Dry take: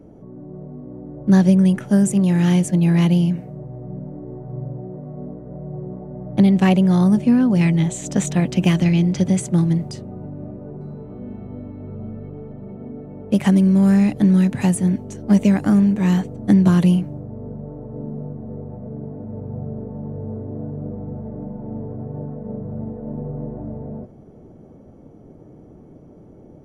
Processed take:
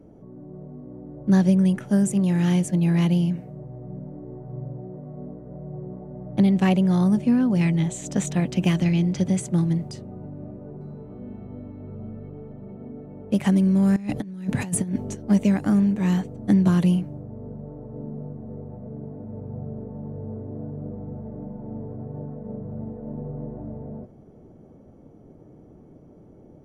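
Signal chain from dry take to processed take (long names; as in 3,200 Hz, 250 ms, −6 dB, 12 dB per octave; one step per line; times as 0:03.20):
0:13.96–0:15.15: compressor whose output falls as the input rises −21 dBFS, ratio −0.5
level −4.5 dB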